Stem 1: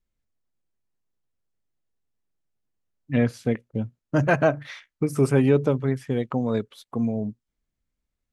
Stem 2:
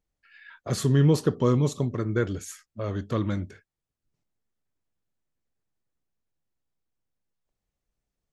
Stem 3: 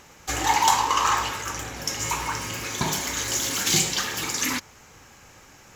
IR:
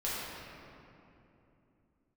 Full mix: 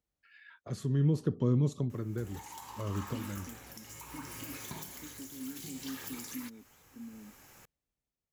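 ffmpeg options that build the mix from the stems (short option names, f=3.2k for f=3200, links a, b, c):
-filter_complex "[0:a]alimiter=limit=-17dB:level=0:latency=1,asplit=3[a][b][c];[a]bandpass=f=270:t=q:w=8,volume=0dB[d];[b]bandpass=f=2.29k:t=q:w=8,volume=-6dB[e];[c]bandpass=f=3.01k:t=q:w=8,volume=-9dB[f];[d][e][f]amix=inputs=3:normalize=0,volume=-7.5dB,asplit=2[g][h];[1:a]highpass=46,volume=-3.5dB[i];[2:a]acompressor=threshold=-36dB:ratio=2,aexciter=amount=4.6:drive=3.2:freq=8.7k,adelay=1900,volume=-8dB[j];[h]apad=whole_len=367006[k];[i][k]sidechaincompress=threshold=-49dB:ratio=8:attack=16:release=390[l];[g][l][j]amix=inputs=3:normalize=0,acrossover=split=360[m][n];[n]acompressor=threshold=-41dB:ratio=5[o];[m][o]amix=inputs=2:normalize=0,tremolo=f=0.66:d=0.48"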